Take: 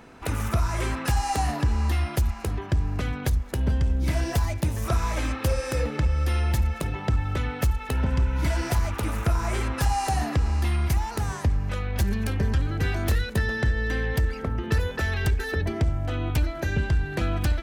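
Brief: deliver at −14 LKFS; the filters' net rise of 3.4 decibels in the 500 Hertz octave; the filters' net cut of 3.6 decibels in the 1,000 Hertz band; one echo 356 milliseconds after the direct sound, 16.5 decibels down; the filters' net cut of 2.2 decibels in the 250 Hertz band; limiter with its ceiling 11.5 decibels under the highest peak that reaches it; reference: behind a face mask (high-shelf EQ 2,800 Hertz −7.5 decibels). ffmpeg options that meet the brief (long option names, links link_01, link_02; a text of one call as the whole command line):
ffmpeg -i in.wav -af "equalizer=frequency=250:width_type=o:gain=-5,equalizer=frequency=500:width_type=o:gain=7.5,equalizer=frequency=1000:width_type=o:gain=-7,alimiter=level_in=0.5dB:limit=-24dB:level=0:latency=1,volume=-0.5dB,highshelf=frequency=2800:gain=-7.5,aecho=1:1:356:0.15,volume=19.5dB" out.wav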